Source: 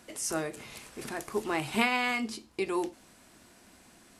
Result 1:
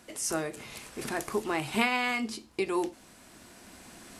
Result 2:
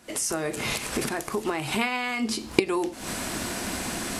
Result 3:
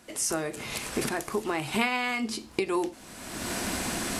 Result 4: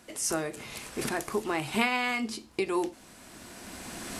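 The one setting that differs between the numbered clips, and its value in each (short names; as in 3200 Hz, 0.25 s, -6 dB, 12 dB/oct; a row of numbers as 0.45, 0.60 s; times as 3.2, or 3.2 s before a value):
recorder AGC, rising by: 5.3, 83, 33, 13 dB/s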